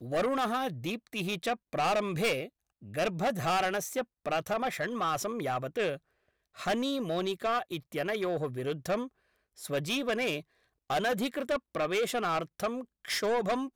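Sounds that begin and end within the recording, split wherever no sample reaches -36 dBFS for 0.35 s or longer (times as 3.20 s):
2.94–5.95 s
6.59–9.06 s
9.63–10.40 s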